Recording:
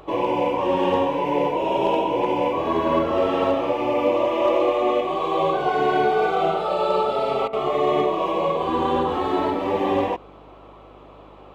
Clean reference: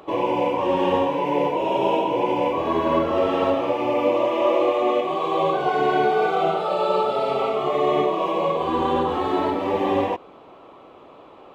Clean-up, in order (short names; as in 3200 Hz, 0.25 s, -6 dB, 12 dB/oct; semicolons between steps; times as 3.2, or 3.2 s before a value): clip repair -10.5 dBFS; de-hum 50.5 Hz, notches 6; interpolate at 7.48, 48 ms